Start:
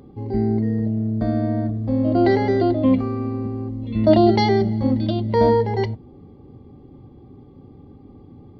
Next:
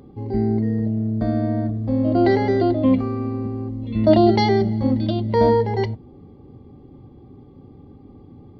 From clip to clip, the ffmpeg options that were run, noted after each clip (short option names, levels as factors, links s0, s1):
-af anull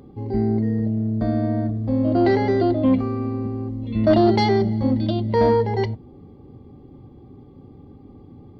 -af "asoftclip=type=tanh:threshold=0.447"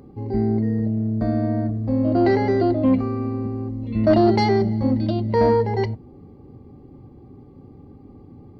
-af "equalizer=f=3400:t=o:w=0.21:g=-11"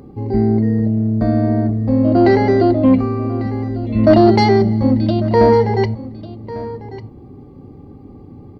-af "aecho=1:1:1147:0.158,volume=2"